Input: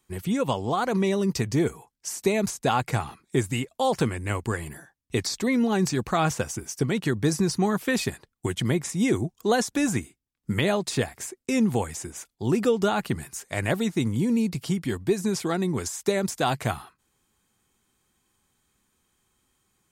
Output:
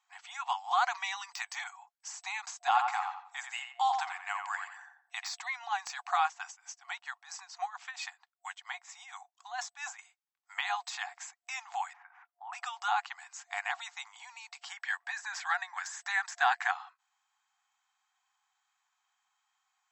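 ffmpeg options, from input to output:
-filter_complex "[0:a]asettb=1/sr,asplit=3[s0][s1][s2];[s0]atrim=end=0.714[s3];[s1]atrim=start=0.71:end=1.64,asetpts=PTS-STARTPTS,afade=t=in:d=0.004:c=qsin,afade=t=out:st=0.926:d=0.004:c=qsin,tiltshelf=f=750:g=-6.5[s4];[s2]atrim=start=1.636[s5];[s3][s4]acrossfade=d=0.004:c1=hsin:c2=qsin[s6];[s6][s5]acrossfade=d=0.004:c1=qsin:c2=hsin,asettb=1/sr,asplit=3[s7][s8][s9];[s7]atrim=end=2.664[s10];[s8]atrim=start=2.66:end=5.34,asetpts=PTS-STARTPTS,afade=t=in:d=0.004:c=qsin,afade=t=out:st=2.676:d=0.004:c=qsin,asplit=2[s11][s12];[s12]adelay=87,lowpass=f=2200:p=1,volume=0.596,asplit=2[s13][s14];[s14]adelay=87,lowpass=f=2200:p=1,volume=0.35,asplit=2[s15][s16];[s16]adelay=87,lowpass=f=2200:p=1,volume=0.35,asplit=2[s17][s18];[s18]adelay=87,lowpass=f=2200:p=1,volume=0.35[s19];[s11][s13][s15][s17][s19]amix=inputs=5:normalize=0,atrim=end_sample=118188[s20];[s9]atrim=start=5.336[s21];[s10][s20]acrossfade=d=0.004:c1=hsin:c2=qsin[s22];[s22][s21]acrossfade=d=0.004:c1=qsin:c2=hsin,asettb=1/sr,asplit=3[s23][s24][s25];[s23]atrim=end=6.234[s26];[s24]atrim=start=6.23:end=9.99,asetpts=PTS-STARTPTS,afade=t=in:d=0.004:c=qsin,afade=t=out:st=3.756:d=0.004:c=qsin,tremolo=f=4.4:d=0.85[s27];[s25]atrim=start=9.986[s28];[s26][s27]acrossfade=d=0.004:c1=hsin:c2=qsin[s29];[s29][s28]acrossfade=d=0.004:c1=qsin:c2=hsin,asettb=1/sr,asplit=3[s30][s31][s32];[s30]atrim=end=11.934[s33];[s31]atrim=start=11.93:end=12.53,asetpts=PTS-STARTPTS,afade=t=in:d=0.004:c=qsin,afade=t=out:st=0.596:d=0.004:c=qsin,lowpass=f=1900:w=0.5412,lowpass=f=1900:w=1.3066[s34];[s32]atrim=start=12.526[s35];[s33][s34]acrossfade=d=0.004:c1=hsin:c2=qsin[s36];[s36][s35]acrossfade=d=0.004:c1=qsin:c2=hsin,asplit=3[s37][s38][s39];[s37]afade=t=out:st=14.68:d=0.02[s40];[s38]equalizer=f=1700:t=o:w=0.42:g=13.5,afade=t=in:st=14.68:d=0.02,afade=t=out:st=16.7:d=0.02[s41];[s39]afade=t=in:st=16.7:d=0.02[s42];[s40][s41][s42]amix=inputs=3:normalize=0,afftfilt=real='re*between(b*sr/4096,700,8000)':imag='im*between(b*sr/4096,700,8000)':win_size=4096:overlap=0.75,highshelf=f=2200:g=-8.5,deesser=0.85"

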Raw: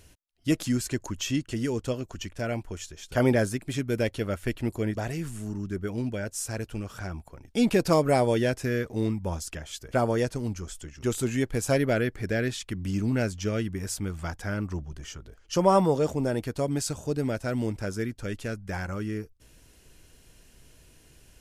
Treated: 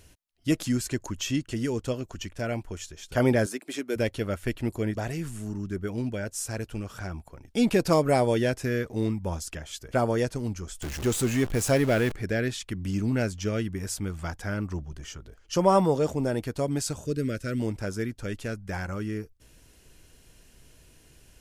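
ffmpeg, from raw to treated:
-filter_complex "[0:a]asettb=1/sr,asplit=3[s0][s1][s2];[s0]atrim=end=3.464[s3];[s1]atrim=start=3.46:end=3.96,asetpts=PTS-STARTPTS,afade=t=in:d=0.004:c=qsin,afade=t=out:st=0.496:d=0.004:c=qsin,highpass=f=270:w=0.5412,highpass=f=270:w=1.3066[s4];[s2]atrim=start=3.956[s5];[s3][s4]acrossfade=d=0.004:c1=hsin:c2=qsin[s6];[s6][s5]acrossfade=d=0.004:c1=qsin:c2=hsin,asettb=1/sr,asplit=3[s7][s8][s9];[s7]atrim=end=10.824[s10];[s8]atrim=start=10.82:end=12.15,asetpts=PTS-STARTPTS,afade=t=in:d=0.004:c=qsin,afade=t=out:st=1.326:d=0.004:c=qsin,aeval=exprs='val(0)+0.5*0.0299*sgn(val(0))':c=same[s11];[s9]atrim=start=12.146[s12];[s10][s11]acrossfade=d=0.004:c1=hsin:c2=qsin[s13];[s13][s12]acrossfade=d=0.004:c1=qsin:c2=hsin,asettb=1/sr,asplit=3[s14][s15][s16];[s14]atrim=end=17.054[s17];[s15]atrim=start=17.05:end=17.6,asetpts=PTS-STARTPTS,afade=t=in:d=0.004:c=qsin,afade=t=out:st=0.546:d=0.004:c=qsin,asuperstop=centerf=830:order=4:qfactor=1.1[s18];[s16]atrim=start=17.596[s19];[s17][s18]acrossfade=d=0.004:c1=hsin:c2=qsin[s20];[s20][s19]acrossfade=d=0.004:c1=qsin:c2=hsin"

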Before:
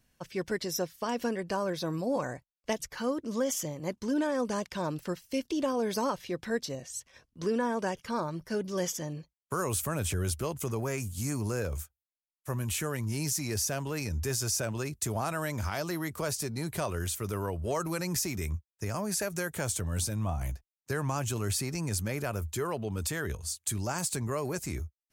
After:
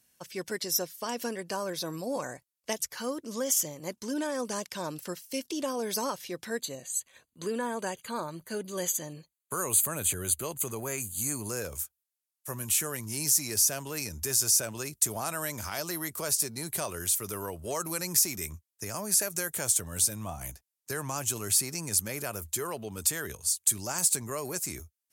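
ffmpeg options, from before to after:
-filter_complex "[0:a]asettb=1/sr,asplit=3[s0][s1][s2];[s0]atrim=end=6.604[s3];[s1]atrim=start=6.6:end=11.49,asetpts=PTS-STARTPTS,afade=t=in:d=0.004:c=qsin,afade=t=out:st=4.886:d=0.004:c=qsin,asuperstop=centerf=5400:order=12:qfactor=4.6[s4];[s2]atrim=start=11.486[s5];[s3][s4]acrossfade=d=0.004:c1=hsin:c2=qsin[s6];[s6][s5]acrossfade=d=0.004:c1=qsin:c2=hsin,highpass=f=200:p=1,equalizer=f=12000:w=0.36:g=13,volume=0.794"

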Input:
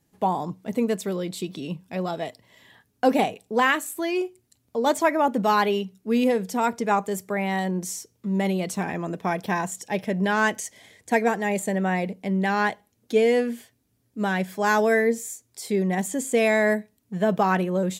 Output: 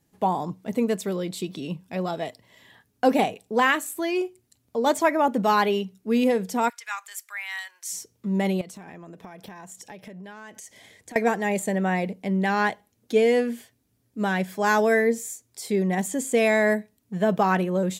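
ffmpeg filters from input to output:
-filter_complex "[0:a]asplit=3[s0][s1][s2];[s0]afade=t=out:st=6.68:d=0.02[s3];[s1]highpass=f=1400:w=0.5412,highpass=f=1400:w=1.3066,afade=t=in:st=6.68:d=0.02,afade=t=out:st=7.92:d=0.02[s4];[s2]afade=t=in:st=7.92:d=0.02[s5];[s3][s4][s5]amix=inputs=3:normalize=0,asettb=1/sr,asplit=3[s6][s7][s8];[s6]atrim=end=8.614[s9];[s7]atrim=start=8.61:end=11.16,asetpts=PTS-STARTPTS,afade=t=in:d=0.004:c=qsin,afade=t=out:st=2.546:d=0.004:c=qsin,acompressor=threshold=0.0126:ratio=12:attack=3.2:release=140:knee=1:detection=peak[s10];[s8]atrim=start=11.156[s11];[s9][s10]acrossfade=d=0.004:c1=hsin:c2=qsin[s12];[s12][s11]acrossfade=d=0.004:c1=qsin:c2=hsin"

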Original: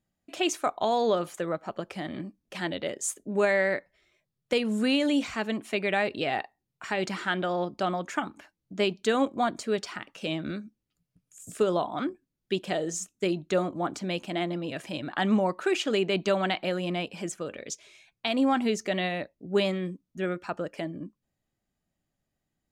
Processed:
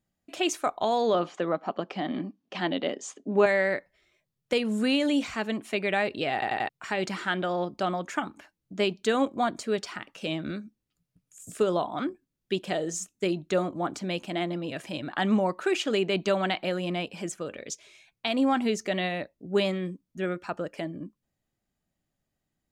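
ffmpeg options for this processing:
-filter_complex "[0:a]asettb=1/sr,asplit=3[s0][s1][s2];[s0]atrim=end=1.144[s3];[s1]atrim=start=1.14:end=3.46,asetpts=PTS-STARTPTS,afade=t=in:d=0.004:c=qsin,afade=t=out:st=2.316:d=0.004:c=qsin,highpass=170,equalizer=f=180:t=q:w=4:g=3,equalizer=f=260:t=q:w=4:g=10,equalizer=f=410:t=q:w=4:g=3,equalizer=f=750:t=q:w=4:g=7,equalizer=f=1100:t=q:w=4:g=5,equalizer=f=3000:t=q:w=4:g=4,lowpass=f=5800:w=0.5412,lowpass=f=5800:w=1.3066[s4];[s2]atrim=start=3.456[s5];[s3][s4]acrossfade=d=0.004:c1=hsin:c2=qsin[s6];[s6][s5]acrossfade=d=0.004:c1=qsin:c2=hsin,asplit=5[s7][s8][s9][s10][s11];[s7]atrim=end=6.422[s12];[s8]atrim=start=6.328:end=6.422[s13];[s9]atrim=start=6.328:end=6.422[s14];[s10]atrim=start=6.328:end=6.422[s15];[s11]atrim=start=6.688[s16];[s12][s13]acrossfade=d=0.004:c1=hsin:c2=hsin[s17];[s17][s14]acrossfade=d=0.004:c1=hsin:c2=hsin[s18];[s18][s15]acrossfade=d=0.004:c1=hsin:c2=hsin[s19];[s19][s16]acrossfade=d=0.004:c1=hsin:c2=hsin"

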